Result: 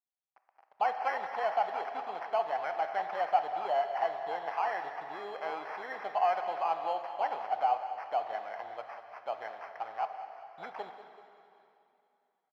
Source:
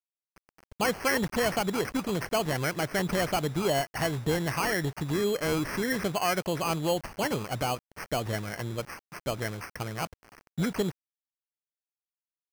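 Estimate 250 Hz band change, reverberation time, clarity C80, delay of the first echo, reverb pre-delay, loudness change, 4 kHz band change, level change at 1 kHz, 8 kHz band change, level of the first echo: -25.0 dB, 2.8 s, 7.5 dB, 0.192 s, 7 ms, -4.0 dB, -15.0 dB, +3.5 dB, under -30 dB, -14.0 dB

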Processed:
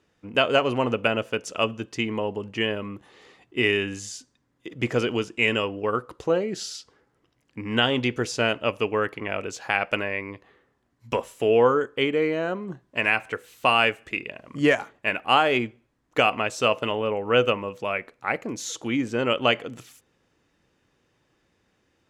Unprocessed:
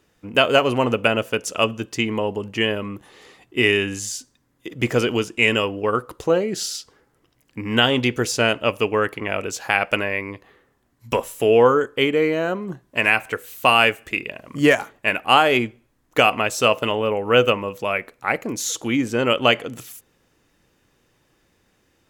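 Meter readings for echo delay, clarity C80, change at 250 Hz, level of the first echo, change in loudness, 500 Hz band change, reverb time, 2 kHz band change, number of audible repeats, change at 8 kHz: none, none, -4.0 dB, none, -4.5 dB, -4.0 dB, none, -4.5 dB, none, -8.5 dB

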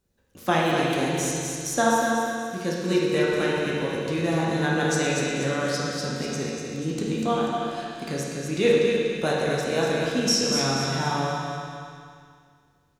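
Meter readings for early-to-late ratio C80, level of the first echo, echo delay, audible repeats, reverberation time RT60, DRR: -1.5 dB, -5.0 dB, 0.243 s, 3, 2.1 s, -6.0 dB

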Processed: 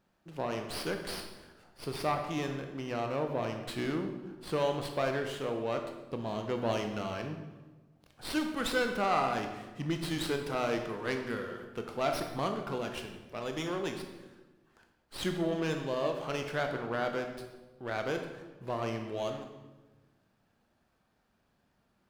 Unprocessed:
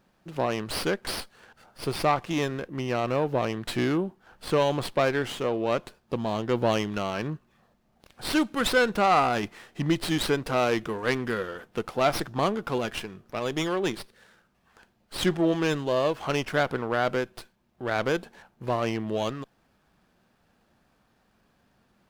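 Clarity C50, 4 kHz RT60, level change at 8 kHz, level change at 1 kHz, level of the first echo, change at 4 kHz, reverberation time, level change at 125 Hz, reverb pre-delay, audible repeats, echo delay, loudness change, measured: 6.5 dB, 0.90 s, -7.5 dB, -7.0 dB, none, -7.5 dB, 1.2 s, -7.0 dB, 19 ms, none, none, -7.0 dB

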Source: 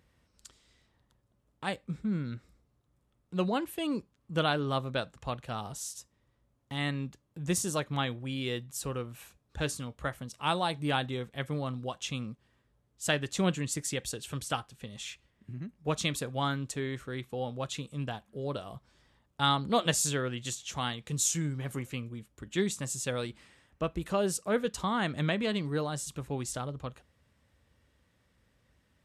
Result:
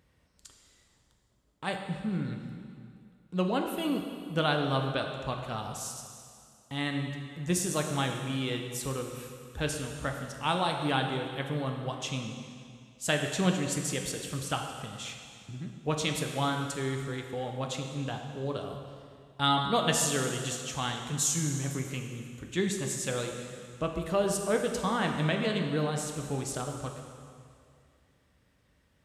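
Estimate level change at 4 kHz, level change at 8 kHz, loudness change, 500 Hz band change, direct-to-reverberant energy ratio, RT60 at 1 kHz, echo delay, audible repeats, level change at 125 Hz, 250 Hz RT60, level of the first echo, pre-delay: +1.5 dB, +1.5 dB, +1.5 dB, +2.0 dB, 3.0 dB, 2.3 s, none, none, +2.0 dB, 2.2 s, none, 4 ms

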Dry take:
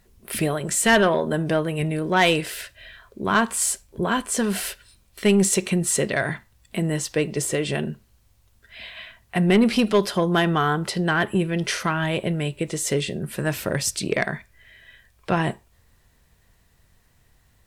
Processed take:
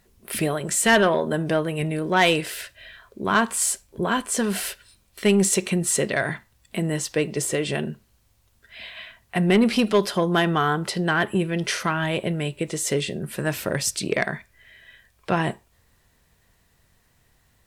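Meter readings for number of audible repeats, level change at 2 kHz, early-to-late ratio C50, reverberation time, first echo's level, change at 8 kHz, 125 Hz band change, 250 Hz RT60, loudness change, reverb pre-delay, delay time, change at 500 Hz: none, 0.0 dB, none, none, none, 0.0 dB, -1.5 dB, none, -0.5 dB, none, none, -0.5 dB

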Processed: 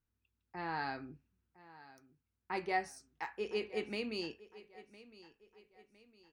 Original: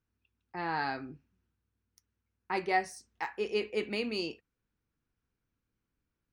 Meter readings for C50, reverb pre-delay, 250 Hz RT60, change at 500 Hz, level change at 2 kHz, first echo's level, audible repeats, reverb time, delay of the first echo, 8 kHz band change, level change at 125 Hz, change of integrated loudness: none, none, none, -5.0 dB, -5.5 dB, -18.5 dB, 3, none, 1.009 s, -5.5 dB, -4.5 dB, -5.5 dB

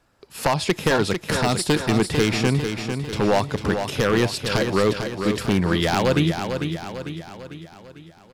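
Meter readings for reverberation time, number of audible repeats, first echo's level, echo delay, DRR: none, 5, -7.0 dB, 0.448 s, none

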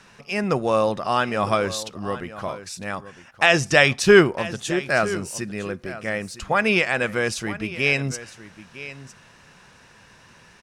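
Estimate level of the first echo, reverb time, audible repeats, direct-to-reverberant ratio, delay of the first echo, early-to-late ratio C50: -15.5 dB, none, 1, none, 0.958 s, none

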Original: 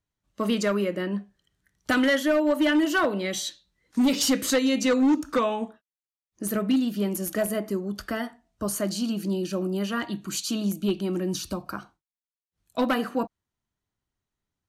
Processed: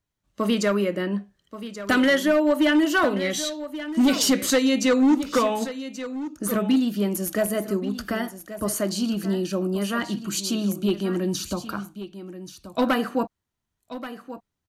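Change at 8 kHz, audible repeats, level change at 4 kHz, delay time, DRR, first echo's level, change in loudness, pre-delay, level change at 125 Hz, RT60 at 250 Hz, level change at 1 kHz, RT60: +2.5 dB, 1, +2.5 dB, 1.131 s, none, -13.0 dB, +2.5 dB, none, +2.5 dB, none, +2.5 dB, none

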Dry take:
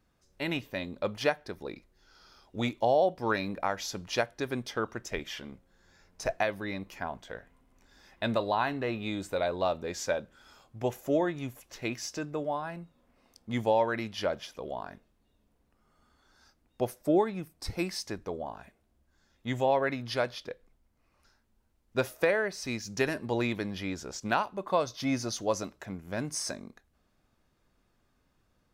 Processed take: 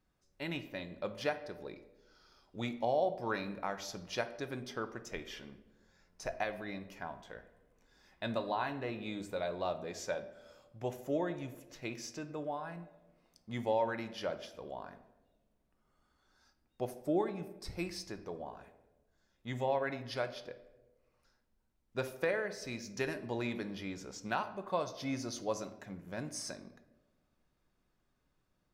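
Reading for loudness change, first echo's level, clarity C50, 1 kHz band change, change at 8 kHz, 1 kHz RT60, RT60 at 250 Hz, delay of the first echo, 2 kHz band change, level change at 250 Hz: -6.5 dB, none, 12.5 dB, -6.5 dB, -7.5 dB, 0.90 s, 1.3 s, none, -7.0 dB, -6.5 dB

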